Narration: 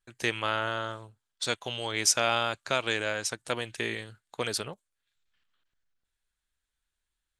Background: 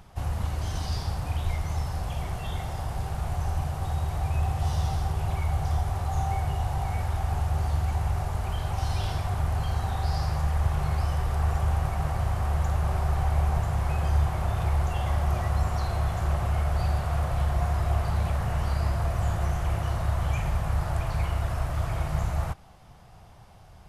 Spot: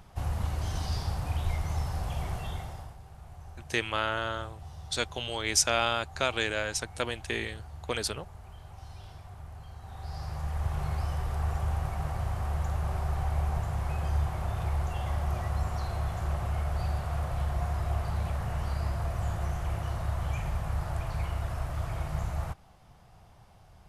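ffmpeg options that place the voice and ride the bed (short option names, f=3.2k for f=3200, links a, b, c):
-filter_complex "[0:a]adelay=3500,volume=-0.5dB[a];[1:a]volume=11dB,afade=t=out:st=2.35:d=0.62:silence=0.158489,afade=t=in:st=9.8:d=1:silence=0.223872[b];[a][b]amix=inputs=2:normalize=0"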